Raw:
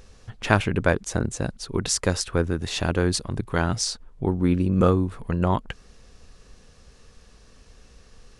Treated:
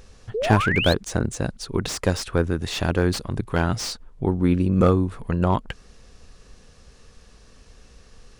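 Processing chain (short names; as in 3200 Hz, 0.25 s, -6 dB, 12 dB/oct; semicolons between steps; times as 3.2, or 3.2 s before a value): painted sound rise, 0.34–0.94, 400–4400 Hz -26 dBFS; slew limiter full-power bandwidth 190 Hz; gain +1.5 dB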